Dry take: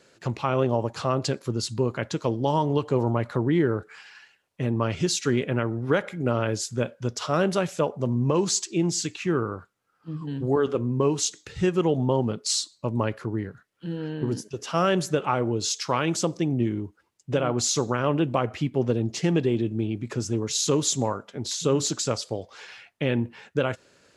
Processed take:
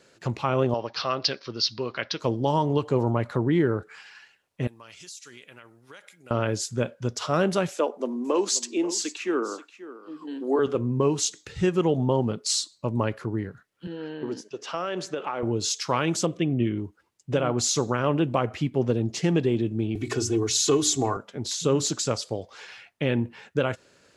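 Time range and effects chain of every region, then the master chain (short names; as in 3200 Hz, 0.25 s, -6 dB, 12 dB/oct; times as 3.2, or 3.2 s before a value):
0.74–2.2 steep low-pass 5500 Hz 72 dB/oct + tilt +4 dB/oct + notch 880 Hz, Q 11
4.67–6.31 pre-emphasis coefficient 0.97 + compressor 4:1, threshold -41 dBFS
7.71–10.59 steep high-pass 240 Hz 48 dB/oct + echo 0.534 s -16 dB
13.87–15.43 BPF 310–5400 Hz + compressor 10:1, threshold -24 dBFS
16.26–16.78 Butterworth band-stop 880 Hz, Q 3.8 + resonant high shelf 3900 Hz -8 dB, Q 3
19.95–21.17 notches 60/120/180/240/300/360 Hz + comb 2.7 ms, depth 80% + three-band squash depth 40%
whole clip: dry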